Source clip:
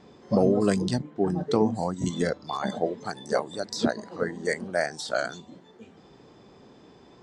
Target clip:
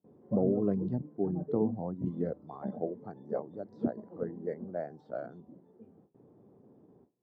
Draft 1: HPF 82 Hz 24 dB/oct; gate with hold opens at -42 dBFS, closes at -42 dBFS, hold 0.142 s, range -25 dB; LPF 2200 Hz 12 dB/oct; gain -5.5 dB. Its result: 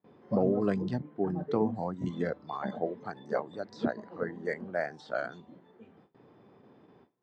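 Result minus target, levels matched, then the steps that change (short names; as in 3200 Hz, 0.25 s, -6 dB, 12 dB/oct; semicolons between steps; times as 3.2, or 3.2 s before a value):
2000 Hz band +16.5 dB
change: LPF 550 Hz 12 dB/oct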